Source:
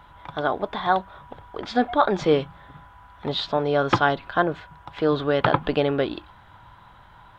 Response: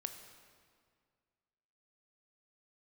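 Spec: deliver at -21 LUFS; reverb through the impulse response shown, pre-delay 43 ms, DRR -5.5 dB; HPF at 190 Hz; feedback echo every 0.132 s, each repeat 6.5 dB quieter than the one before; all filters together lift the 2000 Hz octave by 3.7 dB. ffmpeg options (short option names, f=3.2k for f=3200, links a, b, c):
-filter_complex "[0:a]highpass=190,equalizer=f=2k:t=o:g=5.5,aecho=1:1:132|264|396|528|660|792:0.473|0.222|0.105|0.0491|0.0231|0.0109,asplit=2[a][b];[1:a]atrim=start_sample=2205,adelay=43[c];[b][c]afir=irnorm=-1:irlink=0,volume=7.5dB[d];[a][d]amix=inputs=2:normalize=0,volume=-5dB"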